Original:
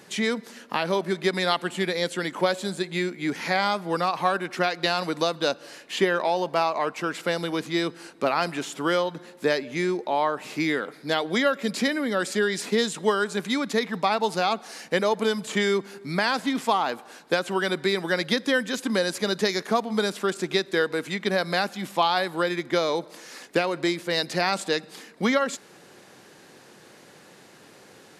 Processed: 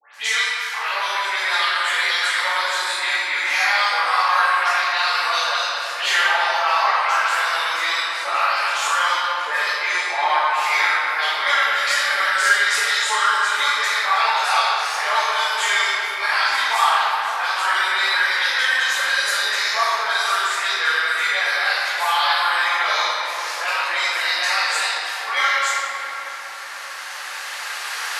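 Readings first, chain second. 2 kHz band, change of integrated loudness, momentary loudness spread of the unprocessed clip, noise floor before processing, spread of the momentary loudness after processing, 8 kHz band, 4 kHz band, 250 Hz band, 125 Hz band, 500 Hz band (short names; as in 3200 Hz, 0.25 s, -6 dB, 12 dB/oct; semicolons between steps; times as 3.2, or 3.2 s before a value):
+12.0 dB, +7.0 dB, 5 LU, -51 dBFS, 6 LU, +9.5 dB, +9.0 dB, under -20 dB, under -30 dB, -7.5 dB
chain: recorder AGC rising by 6.3 dB/s; HPF 1000 Hz 24 dB/oct; limiter -19.5 dBFS, peak gain reduction 8 dB; dispersion highs, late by 0.145 s, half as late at 2400 Hz; hard clip -19.5 dBFS, distortion -40 dB; tape echo 0.64 s, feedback 80%, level -14 dB, low-pass 2400 Hz; vibrato 5.5 Hz 24 cents; shoebox room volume 180 m³, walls hard, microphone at 2.2 m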